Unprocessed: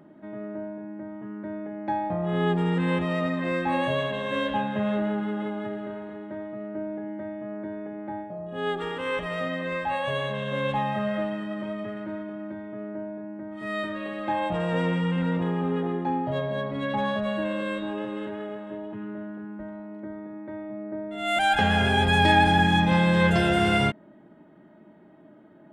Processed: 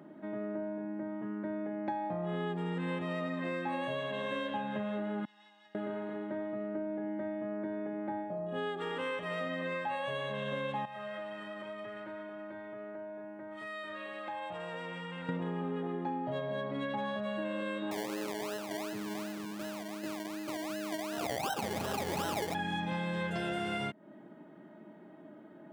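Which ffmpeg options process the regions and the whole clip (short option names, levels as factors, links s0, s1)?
-filter_complex "[0:a]asettb=1/sr,asplit=3[s0][s1][s2];[s0]atrim=end=5.254[s3];[s1]atrim=start=5.25:end=5.75,asetpts=PTS-STARTPTS,afade=t=in:d=0.004:c=qsin,afade=t=out:st=0.496:d=0.004:c=qsin,bandpass=f=5300:t=q:w=4.1,aecho=1:1:1.1:0.81,atrim=end_sample=22050[s4];[s2]atrim=start=5.746[s5];[s3][s4]acrossfade=d=0.004:c1=hsin:c2=qsin[s6];[s6][s5]acrossfade=d=0.004:c1=qsin:c2=hsin,asettb=1/sr,asplit=3[s7][s8][s9];[s7]atrim=end=10.854[s10];[s8]atrim=start=10.85:end=15.29,asetpts=PTS-STARTPTS,afade=t=in:d=0.004:c=qsin,afade=t=out:st=4.436:d=0.004:c=qsin,equalizer=f=230:w=0.77:g=-12.5,acompressor=threshold=0.01:ratio=3:attack=3.2:release=140:knee=1:detection=peak[s11];[s9]atrim=start=15.286[s12];[s10][s11]acrossfade=d=0.004:c1=hsin:c2=qsin[s13];[s13][s12]acrossfade=d=0.004:c1=qsin:c2=hsin,asettb=1/sr,asplit=3[s14][s15][s16];[s14]atrim=end=17.914[s17];[s15]atrim=start=17.91:end=22.55,asetpts=PTS-STARTPTS,afade=t=in:d=0.004:c=qsin,afade=t=out:st=4.636:d=0.004:c=qsin,equalizer=f=230:t=o:w=0.21:g=-12,acrusher=samples=27:mix=1:aa=0.000001:lfo=1:lforange=16.2:lforate=2.7[s18];[s16]atrim=start=22.546[s19];[s17][s18]acrossfade=d=0.004:c1=hsin:c2=qsin[s20];[s20][s19]acrossfade=d=0.004:c1=qsin:c2=hsin,highpass=150,acompressor=threshold=0.0224:ratio=6"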